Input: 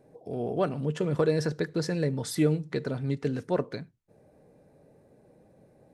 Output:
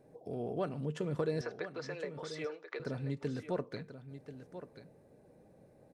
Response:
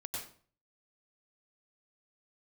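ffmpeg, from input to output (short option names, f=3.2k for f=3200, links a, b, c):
-filter_complex "[0:a]acompressor=threshold=-38dB:ratio=1.5,asettb=1/sr,asplit=3[a][b][c];[a]atrim=end=1.414[d];[b]atrim=start=1.41:end=2.8,asetpts=PTS-STARTPTS,afade=t=in:d=0.004:c=qsin,afade=t=out:st=1.386:d=0.004:c=qsin,highpass=f=440:w=0.5412,highpass=f=440:w=1.3066,equalizer=f=1.2k:t=q:w=4:g=8,equalizer=f=2.3k:t=q:w=4:g=5,equalizer=f=4.4k:t=q:w=4:g=-6,lowpass=f=5.5k:w=0.5412,lowpass=f=5.5k:w=1.3066[e];[c]atrim=start=2.796[f];[d][e]acrossfade=d=0.004:c1=hsin:c2=qsin[g];[g][f]acrossfade=d=0.004:c1=qsin:c2=hsin,aecho=1:1:1036:0.266,volume=-3dB"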